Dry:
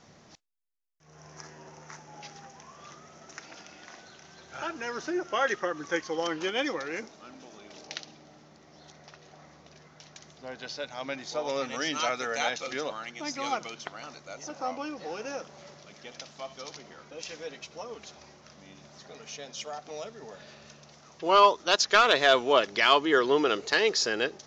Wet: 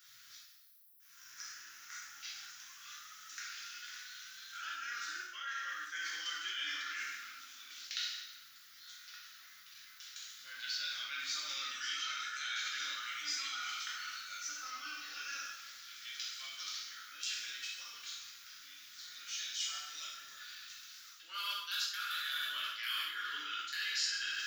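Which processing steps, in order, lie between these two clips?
EQ curve 120 Hz 0 dB, 170 Hz -16 dB, 280 Hz -14 dB, 430 Hz -29 dB, 900 Hz -25 dB, 1400 Hz +1 dB, 2100 Hz -6 dB, 4000 Hz -5 dB, 6400 Hz -14 dB, 11000 Hz +14 dB; plate-style reverb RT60 1.1 s, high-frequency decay 0.9×, DRR -6.5 dB; reverse; compressor 8:1, threshold -35 dBFS, peak gain reduction 20.5 dB; reverse; differentiator; gain +9 dB

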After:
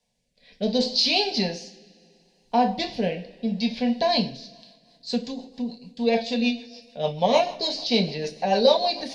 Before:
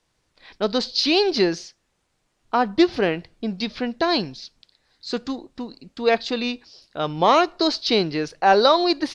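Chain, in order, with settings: fixed phaser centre 350 Hz, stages 6; two-slope reverb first 0.31 s, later 1.9 s, from -18 dB, DRR 1.5 dB; rotary speaker horn 0.7 Hz, later 6.7 Hz, at 4.27

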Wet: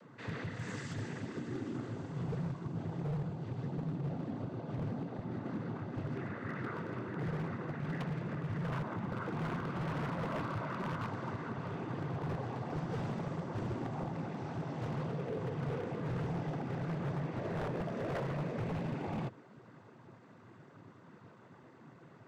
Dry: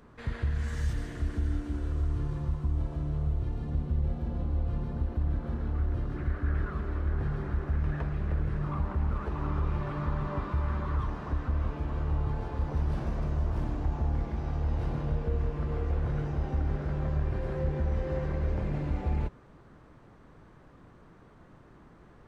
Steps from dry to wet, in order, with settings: noise vocoder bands 16; wavefolder -31 dBFS

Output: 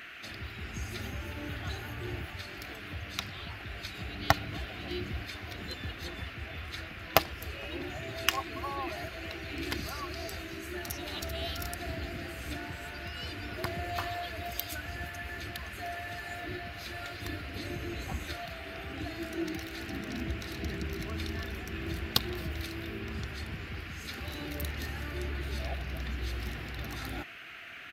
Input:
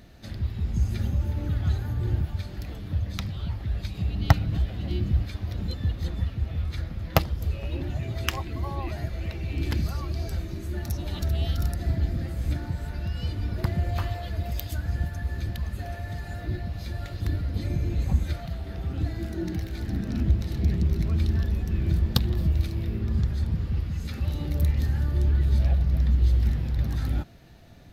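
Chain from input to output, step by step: HPF 580 Hz 6 dB/oct; comb 2.8 ms, depth 34%; band noise 1300–2900 Hz -49 dBFS; gain +1.5 dB

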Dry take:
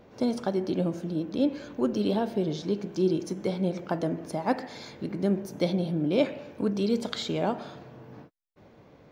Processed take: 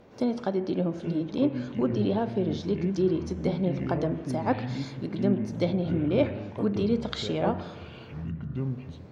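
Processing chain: treble ducked by the level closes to 2900 Hz, closed at -22.5 dBFS; echoes that change speed 0.724 s, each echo -7 st, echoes 2, each echo -6 dB

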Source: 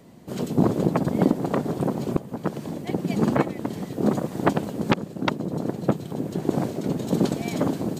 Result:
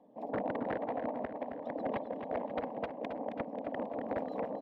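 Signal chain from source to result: formant sharpening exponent 1.5; speed mistake 45 rpm record played at 78 rpm; bell 170 Hz -5.5 dB 0.44 oct; fixed phaser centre 370 Hz, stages 6; wavefolder -18 dBFS; HPF 61 Hz; air absorption 440 m; feedback echo 0.269 s, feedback 56%, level -8.5 dB; gain -7.5 dB

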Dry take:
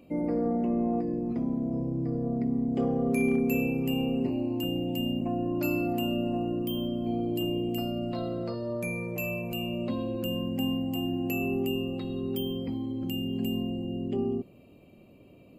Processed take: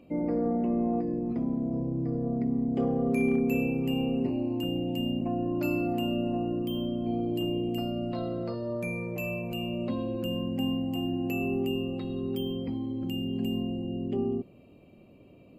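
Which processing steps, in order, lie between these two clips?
high shelf 5700 Hz -9 dB

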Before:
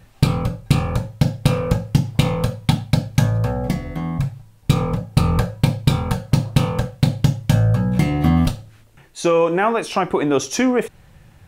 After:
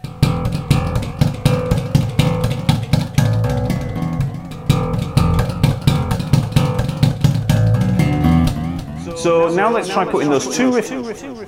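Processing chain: whine 740 Hz -46 dBFS; pre-echo 0.186 s -15 dB; warbling echo 0.319 s, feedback 51%, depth 104 cents, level -10 dB; gain +2 dB

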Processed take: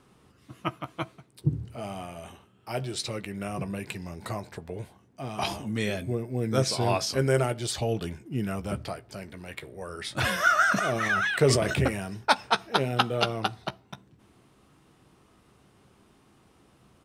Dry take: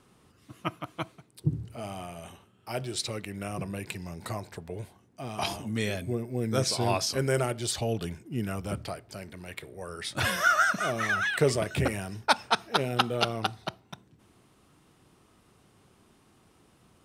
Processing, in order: high shelf 4900 Hz -4.5 dB; doubler 15 ms -11.5 dB; 10.67–11.76 sustainer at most 43 dB/s; gain +1.5 dB

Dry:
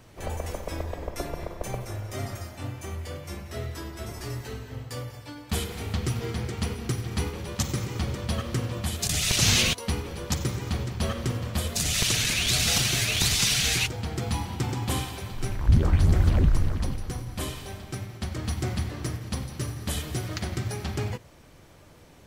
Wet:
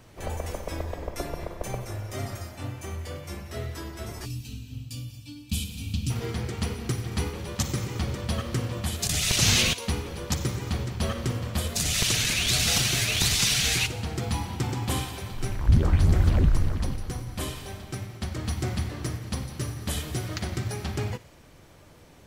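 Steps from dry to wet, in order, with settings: on a send: thin delay 60 ms, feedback 69%, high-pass 1600 Hz, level -18 dB; on the sum: spectral gain 4.26–6.1, 310–2300 Hz -20 dB

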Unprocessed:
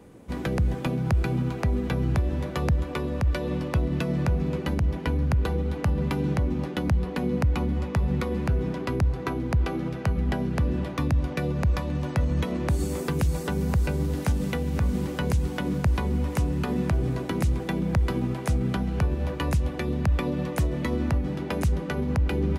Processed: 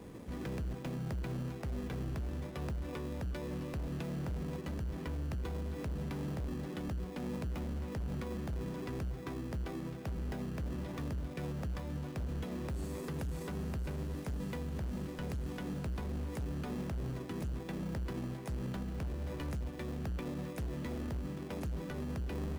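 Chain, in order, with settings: in parallel at -4.5 dB: sample-and-hold 30×; on the sum: hard clip -20 dBFS, distortion -10 dB; limiter -31.5 dBFS, peak gain reduction 11.5 dB; gain -3 dB

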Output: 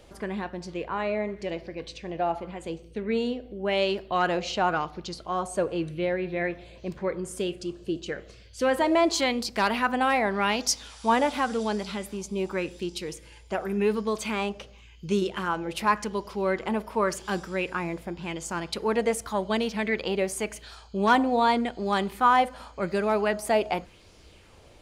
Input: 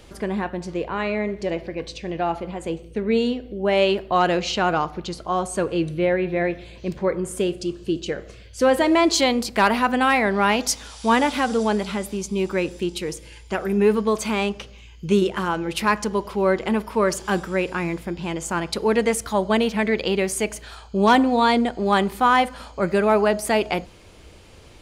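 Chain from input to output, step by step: LFO bell 0.89 Hz 590–5500 Hz +7 dB; gain -7 dB

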